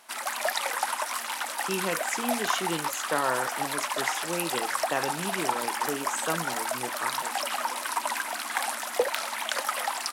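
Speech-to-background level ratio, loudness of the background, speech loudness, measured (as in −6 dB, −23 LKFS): −4.0 dB, −29.5 LKFS, −33.5 LKFS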